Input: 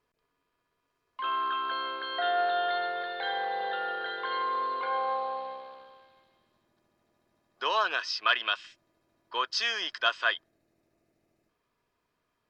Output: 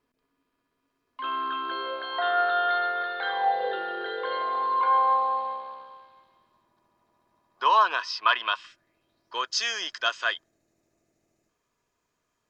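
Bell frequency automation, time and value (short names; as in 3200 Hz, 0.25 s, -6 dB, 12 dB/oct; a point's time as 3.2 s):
bell +12.5 dB 0.43 oct
1.6 s 260 Hz
2.33 s 1300 Hz
3.28 s 1300 Hz
3.86 s 300 Hz
4.78 s 1000 Hz
8.61 s 1000 Hz
9.36 s 6700 Hz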